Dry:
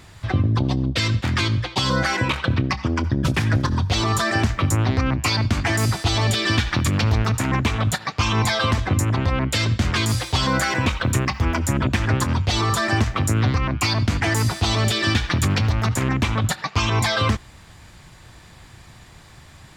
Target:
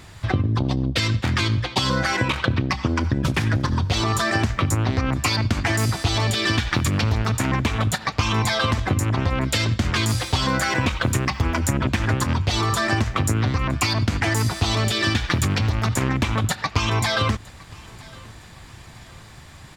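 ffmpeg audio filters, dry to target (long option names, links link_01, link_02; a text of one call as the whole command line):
ffmpeg -i in.wav -filter_complex "[0:a]acompressor=threshold=-21dB:ratio=4,aeval=exprs='0.266*(cos(1*acos(clip(val(0)/0.266,-1,1)))-cos(1*PI/2))+0.0335*(cos(3*acos(clip(val(0)/0.266,-1,1)))-cos(3*PI/2))':channel_layout=same,asplit=2[link_01][link_02];[link_02]aecho=0:1:962|1924|2886:0.0708|0.0283|0.0113[link_03];[link_01][link_03]amix=inputs=2:normalize=0,volume=6dB" out.wav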